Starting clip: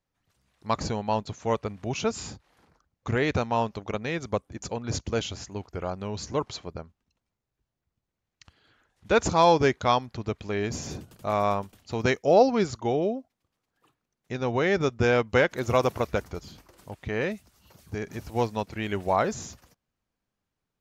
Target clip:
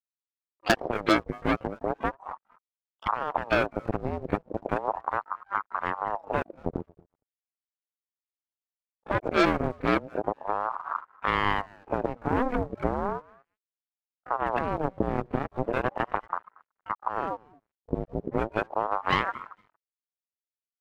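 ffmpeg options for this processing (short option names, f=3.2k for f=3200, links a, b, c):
-filter_complex "[0:a]highpass=f=40:p=1,afftfilt=real='re*gte(hypot(re,im),0.0501)':imag='im*gte(hypot(re,im),0.0501)':win_size=1024:overlap=0.75,asubboost=boost=7:cutoff=230,acompressor=threshold=-28dB:ratio=8,lowpass=f=970:t=q:w=8.4,aeval=exprs='sgn(val(0))*max(abs(val(0))-0.00251,0)':c=same,aecho=1:1:232|464:0.112|0.0247,aeval=exprs='sgn(val(0))*max(abs(val(0))-0.00133,0)':c=same,asplit=2[a][b];[b]asetrate=88200,aresample=44100,atempo=0.5,volume=-13dB[c];[a][c]amix=inputs=2:normalize=0,aeval=exprs='0.237*(cos(1*acos(clip(val(0)/0.237,-1,1)))-cos(1*PI/2))+0.0015*(cos(2*acos(clip(val(0)/0.237,-1,1)))-cos(2*PI/2))+0.106*(cos(4*acos(clip(val(0)/0.237,-1,1)))-cos(4*PI/2))+0.0119*(cos(6*acos(clip(val(0)/0.237,-1,1)))-cos(6*PI/2))+0.0237*(cos(8*acos(clip(val(0)/0.237,-1,1)))-cos(8*PI/2))':c=same,aeval=exprs='val(0)*sin(2*PI*720*n/s+720*0.65/0.36*sin(2*PI*0.36*n/s))':c=same"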